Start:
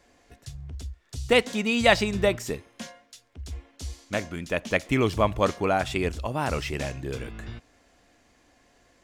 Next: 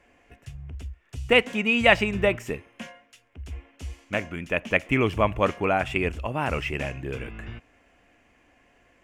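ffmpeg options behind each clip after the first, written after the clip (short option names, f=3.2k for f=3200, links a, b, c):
-af "highshelf=f=3.3k:t=q:w=3:g=-6.5"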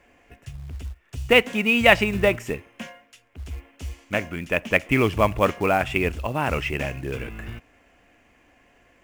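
-af "acrusher=bits=6:mode=log:mix=0:aa=0.000001,volume=2.5dB"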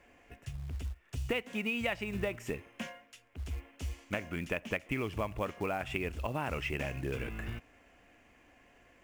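-af "acompressor=threshold=-27dB:ratio=8,volume=-4dB"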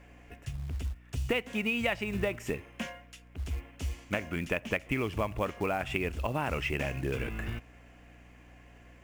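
-af "aeval=exprs='val(0)+0.00126*(sin(2*PI*60*n/s)+sin(2*PI*2*60*n/s)/2+sin(2*PI*3*60*n/s)/3+sin(2*PI*4*60*n/s)/4+sin(2*PI*5*60*n/s)/5)':c=same,volume=3.5dB"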